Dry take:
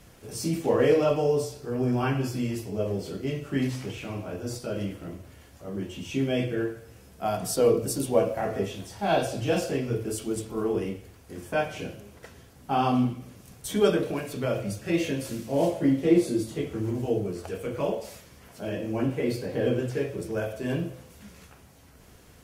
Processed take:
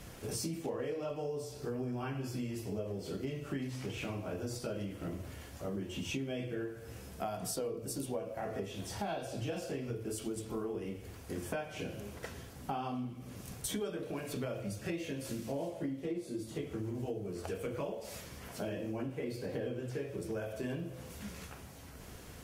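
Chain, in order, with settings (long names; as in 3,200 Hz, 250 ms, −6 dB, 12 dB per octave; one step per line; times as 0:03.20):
downward compressor 12 to 1, threshold −38 dBFS, peak gain reduction 23.5 dB
level +3 dB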